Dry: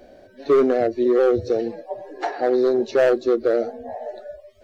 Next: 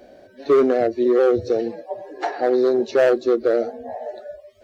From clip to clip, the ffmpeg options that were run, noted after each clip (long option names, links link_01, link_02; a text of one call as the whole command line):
ffmpeg -i in.wav -af "highpass=frequency=86:poles=1,volume=1dB" out.wav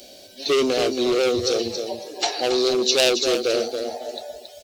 ffmpeg -i in.wav -af "aecho=1:1:276|552|828:0.398|0.0916|0.0211,aeval=exprs='0.473*(cos(1*acos(clip(val(0)/0.473,-1,1)))-cos(1*PI/2))+0.0944*(cos(5*acos(clip(val(0)/0.473,-1,1)))-cos(5*PI/2))+0.0266*(cos(7*acos(clip(val(0)/0.473,-1,1)))-cos(7*PI/2))':channel_layout=same,aexciter=amount=12.2:drive=4.1:freq=2600,volume=-6dB" out.wav